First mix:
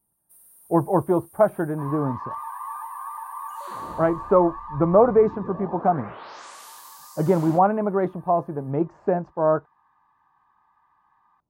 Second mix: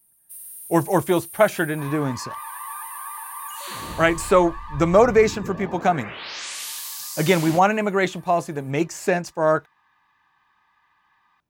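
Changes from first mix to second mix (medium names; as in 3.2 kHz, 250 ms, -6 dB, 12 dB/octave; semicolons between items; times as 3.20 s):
speech: remove tape spacing loss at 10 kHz 39 dB; first sound: add bass shelf 200 Hz +10 dB; master: add resonant high shelf 1.6 kHz +13.5 dB, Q 1.5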